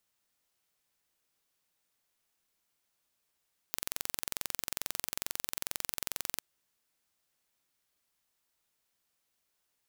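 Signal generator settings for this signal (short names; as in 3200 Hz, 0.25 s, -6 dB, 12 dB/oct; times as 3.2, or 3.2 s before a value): pulse train 22.3/s, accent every 0, -6 dBFS 2.65 s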